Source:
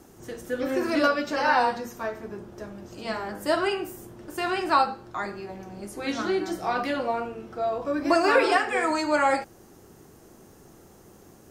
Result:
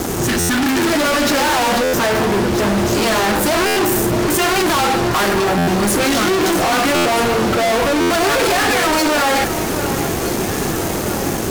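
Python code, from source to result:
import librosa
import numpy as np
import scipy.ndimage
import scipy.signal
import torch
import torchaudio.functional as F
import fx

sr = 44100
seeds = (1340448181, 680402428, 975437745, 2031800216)

p1 = fx.spec_repair(x, sr, seeds[0], start_s=0.3, length_s=0.57, low_hz=360.0, high_hz=1100.0, source='before')
p2 = fx.over_compress(p1, sr, threshold_db=-28.0, ratio=-1.0)
p3 = p1 + (p2 * 10.0 ** (0.5 / 20.0))
p4 = fx.fuzz(p3, sr, gain_db=45.0, gate_db=-48.0)
p5 = p4 + fx.echo_alternate(p4, sr, ms=639, hz=2300.0, feedback_pct=78, wet_db=-10, dry=0)
p6 = fx.buffer_glitch(p5, sr, at_s=(0.39, 1.83, 3.66, 5.57, 6.95, 8.0), block=512, repeats=8)
y = p6 * 10.0 ** (-2.0 / 20.0)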